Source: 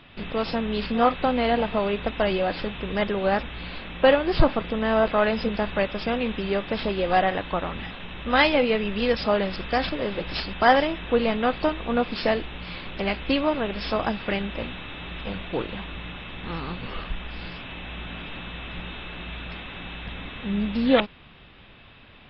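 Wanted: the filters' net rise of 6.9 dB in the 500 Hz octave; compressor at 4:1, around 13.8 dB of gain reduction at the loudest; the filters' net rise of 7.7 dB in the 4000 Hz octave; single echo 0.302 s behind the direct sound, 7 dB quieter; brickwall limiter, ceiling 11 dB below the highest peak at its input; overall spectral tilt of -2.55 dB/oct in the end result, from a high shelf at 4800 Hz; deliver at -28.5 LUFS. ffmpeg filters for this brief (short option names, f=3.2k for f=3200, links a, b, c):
-af "equalizer=f=500:t=o:g=8,equalizer=f=4k:t=o:g=8,highshelf=f=4.8k:g=5,acompressor=threshold=-23dB:ratio=4,alimiter=limit=-21.5dB:level=0:latency=1,aecho=1:1:302:0.447,volume=1.5dB"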